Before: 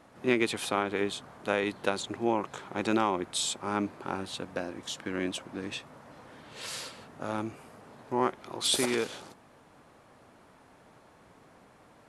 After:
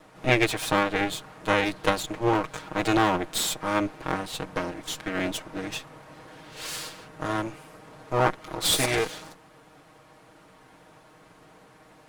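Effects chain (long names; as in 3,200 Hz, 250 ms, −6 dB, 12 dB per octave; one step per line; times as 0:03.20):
lower of the sound and its delayed copy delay 6.4 ms
level +5.5 dB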